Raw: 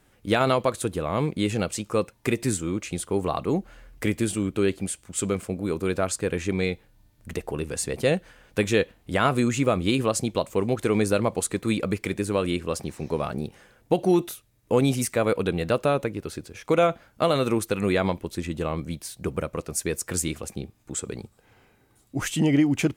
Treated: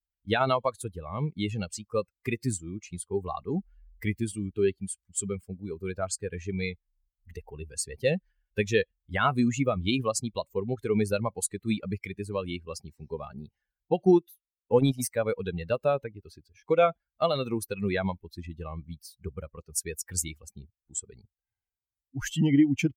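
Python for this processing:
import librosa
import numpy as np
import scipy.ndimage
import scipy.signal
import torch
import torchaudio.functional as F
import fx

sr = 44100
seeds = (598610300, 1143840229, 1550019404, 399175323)

y = fx.bin_expand(x, sr, power=2.0)
y = fx.transient(y, sr, attack_db=2, sustain_db=-11, at=(14.03, 15.0), fade=0.02)
y = y * librosa.db_to_amplitude(1.5)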